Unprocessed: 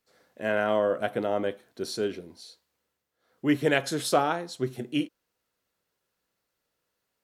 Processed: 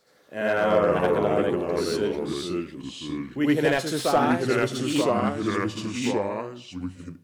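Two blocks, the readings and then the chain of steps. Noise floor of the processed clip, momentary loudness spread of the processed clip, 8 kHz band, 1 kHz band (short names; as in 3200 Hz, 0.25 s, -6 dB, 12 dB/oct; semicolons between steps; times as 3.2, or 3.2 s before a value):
-50 dBFS, 14 LU, +3.5 dB, +5.0 dB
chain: echoes that change speed 0.148 s, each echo -3 st, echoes 2; reverse echo 79 ms -4 dB; slew limiter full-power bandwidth 140 Hz; gain +1.5 dB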